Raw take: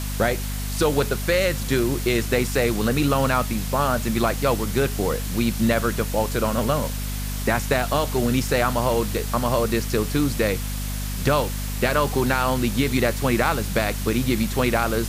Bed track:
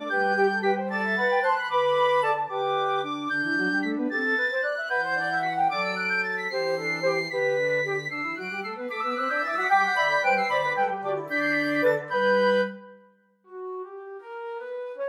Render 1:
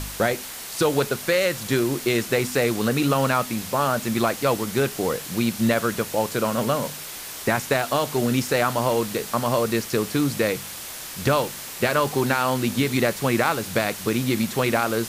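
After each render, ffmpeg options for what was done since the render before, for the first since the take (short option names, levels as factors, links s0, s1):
-af "bandreject=f=50:t=h:w=4,bandreject=f=100:t=h:w=4,bandreject=f=150:t=h:w=4,bandreject=f=200:t=h:w=4,bandreject=f=250:t=h:w=4"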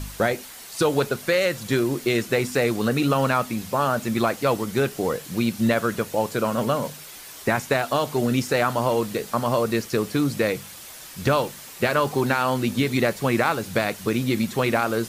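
-af "afftdn=nr=7:nf=-36"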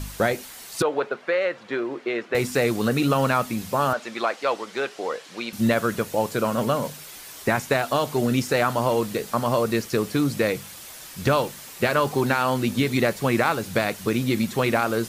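-filter_complex "[0:a]asettb=1/sr,asplit=3[s0][s1][s2];[s0]atrim=end=0.824[s3];[s1]atrim=start=0.82:end=2.35,asetpts=PTS-STARTPTS,afade=t=in:d=0.004:c=qsin,afade=t=out:st=1.526:d=0.004:c=qsin,highpass=420,lowpass=2100[s4];[s2]atrim=start=2.346[s5];[s3][s4]acrossfade=d=0.004:c1=hsin:c2=qsin[s6];[s6][s5]acrossfade=d=0.004:c1=qsin:c2=hsin,asettb=1/sr,asplit=3[s7][s8][s9];[s7]atrim=end=3.934[s10];[s8]atrim=start=3.93:end=5.53,asetpts=PTS-STARTPTS,afade=t=in:d=0.004:c=qsin,afade=t=out:st=1.596:d=0.004:c=qsin,highpass=510,lowpass=5100[s11];[s9]atrim=start=5.526[s12];[s10][s11]acrossfade=d=0.004:c1=hsin:c2=qsin[s13];[s13][s12]acrossfade=d=0.004:c1=qsin:c2=hsin"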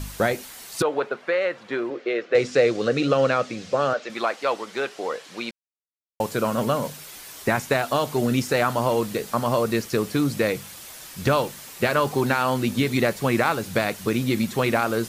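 -filter_complex "[0:a]asettb=1/sr,asplit=3[s0][s1][s2];[s0]atrim=end=1.904[s3];[s1]atrim=start=1.9:end=4.1,asetpts=PTS-STARTPTS,afade=t=in:d=0.004:c=qsin,afade=t=out:st=2.196:d=0.004:c=qsin,highpass=150,equalizer=f=220:t=q:w=4:g=-7,equalizer=f=510:t=q:w=4:g=8,equalizer=f=940:t=q:w=4:g=-9,lowpass=f=6500:w=0.5412,lowpass=f=6500:w=1.3066[s4];[s2]atrim=start=4.096[s5];[s3][s4]acrossfade=d=0.004:c1=hsin:c2=qsin[s6];[s6][s5]acrossfade=d=0.004:c1=qsin:c2=hsin,asplit=3[s7][s8][s9];[s7]atrim=end=5.51,asetpts=PTS-STARTPTS,afade=t=out:st=5.506:d=0.004:c=hsin[s10];[s8]atrim=start=5.51:end=6.2,asetpts=PTS-STARTPTS,volume=0[s11];[s9]atrim=start=6.2,asetpts=PTS-STARTPTS,afade=t=in:d=0.004:c=hsin[s12];[s10][s11][s12]concat=n=3:v=0:a=1"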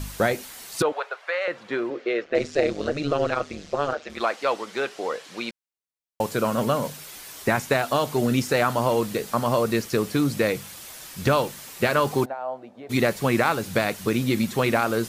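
-filter_complex "[0:a]asettb=1/sr,asplit=3[s0][s1][s2];[s0]atrim=end=0.924[s3];[s1]atrim=start=0.92:end=1.48,asetpts=PTS-STARTPTS,afade=t=in:d=0.004:c=qsin,afade=t=out:st=0.556:d=0.004:c=qsin,highpass=f=610:w=0.5412,highpass=f=610:w=1.3066[s4];[s2]atrim=start=1.476[s5];[s3][s4]acrossfade=d=0.004:c1=hsin:c2=qsin[s6];[s6][s5]acrossfade=d=0.004:c1=qsin:c2=hsin,asettb=1/sr,asplit=3[s7][s8][s9];[s7]atrim=end=2.244[s10];[s8]atrim=start=2.24:end=4.21,asetpts=PTS-STARTPTS,afade=t=in:d=0.004:c=qsin,afade=t=out:st=1.966:d=0.004:c=qsin,tremolo=f=150:d=0.889[s11];[s9]atrim=start=4.206[s12];[s10][s11]acrossfade=d=0.004:c1=hsin:c2=qsin[s13];[s13][s12]acrossfade=d=0.004:c1=qsin:c2=hsin,asplit=3[s14][s15][s16];[s14]afade=t=out:st=12.24:d=0.02[s17];[s15]bandpass=f=680:t=q:w=5.3,afade=t=in:st=12.24:d=0.02,afade=t=out:st=12.89:d=0.02[s18];[s16]afade=t=in:st=12.89:d=0.02[s19];[s17][s18][s19]amix=inputs=3:normalize=0"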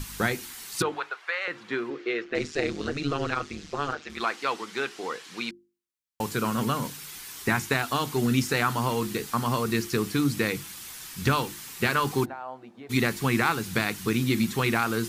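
-af "equalizer=f=590:w=2.3:g=-14,bandreject=f=50:t=h:w=6,bandreject=f=100:t=h:w=6,bandreject=f=150:t=h:w=6,bandreject=f=200:t=h:w=6,bandreject=f=250:t=h:w=6,bandreject=f=300:t=h:w=6,bandreject=f=350:t=h:w=6"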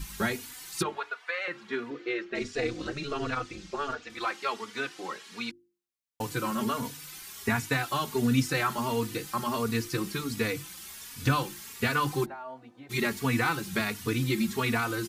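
-filter_complex "[0:a]asplit=2[s0][s1];[s1]adelay=3.4,afreqshift=1.4[s2];[s0][s2]amix=inputs=2:normalize=1"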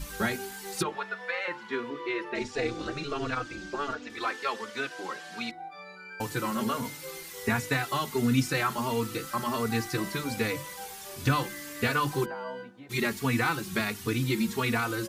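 -filter_complex "[1:a]volume=0.119[s0];[0:a][s0]amix=inputs=2:normalize=0"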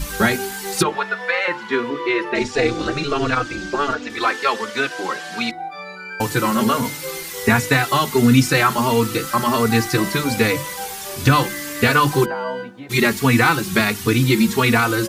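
-af "volume=3.98,alimiter=limit=0.708:level=0:latency=1"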